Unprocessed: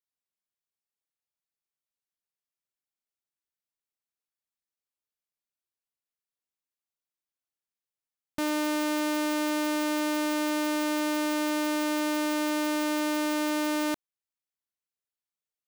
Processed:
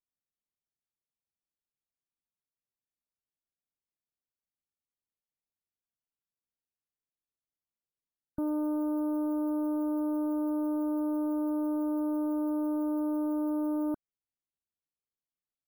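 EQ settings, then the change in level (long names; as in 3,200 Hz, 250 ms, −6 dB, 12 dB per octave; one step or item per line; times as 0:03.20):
linear-phase brick-wall band-stop 1,500–10,000 Hz
tilt shelving filter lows +9 dB, about 640 Hz
−6.0 dB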